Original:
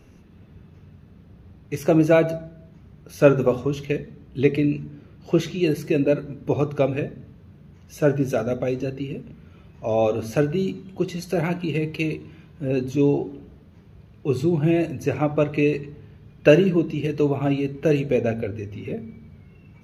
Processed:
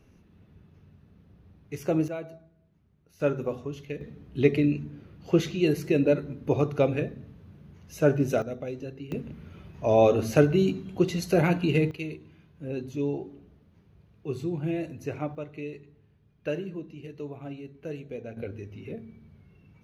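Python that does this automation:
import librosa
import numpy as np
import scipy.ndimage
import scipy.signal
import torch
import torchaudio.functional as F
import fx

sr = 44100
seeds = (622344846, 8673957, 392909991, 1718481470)

y = fx.gain(x, sr, db=fx.steps((0.0, -8.0), (2.08, -19.0), (3.2, -11.0), (4.01, -2.5), (8.42, -10.5), (9.12, 1.0), (11.91, -10.0), (15.35, -17.0), (18.37, -8.0)))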